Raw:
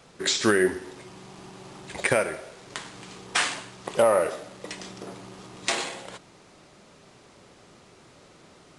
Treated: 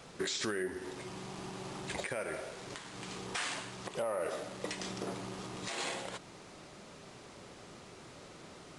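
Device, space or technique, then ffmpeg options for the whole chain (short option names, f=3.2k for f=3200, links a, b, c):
stacked limiters: -af "alimiter=limit=-13.5dB:level=0:latency=1:release=211,alimiter=limit=-19dB:level=0:latency=1:release=489,alimiter=level_in=2dB:limit=-24dB:level=0:latency=1:release=210,volume=-2dB,volume=1dB"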